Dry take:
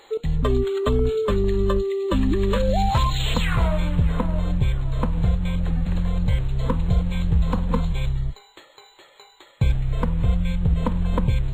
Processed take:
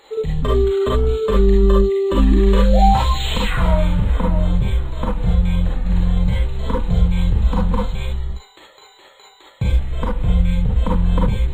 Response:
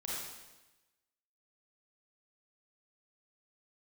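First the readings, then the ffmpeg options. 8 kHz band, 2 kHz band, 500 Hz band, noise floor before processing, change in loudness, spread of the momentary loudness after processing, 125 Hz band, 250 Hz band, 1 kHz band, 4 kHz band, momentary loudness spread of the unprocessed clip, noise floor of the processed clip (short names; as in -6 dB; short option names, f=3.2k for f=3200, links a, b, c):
n/a, +3.0 dB, +5.0 dB, -53 dBFS, +5.0 dB, 9 LU, +3.5 dB, +4.0 dB, +6.0 dB, +3.5 dB, 4 LU, -48 dBFS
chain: -filter_complex "[1:a]atrim=start_sample=2205,atrim=end_sample=3528[a];[0:a][a]afir=irnorm=-1:irlink=0,volume=4.5dB"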